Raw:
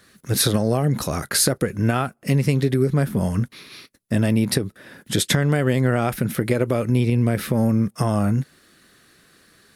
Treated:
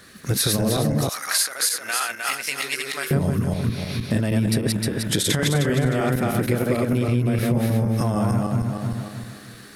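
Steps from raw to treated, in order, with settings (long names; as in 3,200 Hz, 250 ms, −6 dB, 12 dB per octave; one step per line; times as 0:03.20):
feedback delay that plays each chunk backwards 154 ms, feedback 56%, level −0.5 dB
0:01.09–0:03.11: high-pass filter 1,500 Hz 12 dB per octave
downward compressor 3 to 1, threshold −28 dBFS, peak gain reduction 14 dB
level +6.5 dB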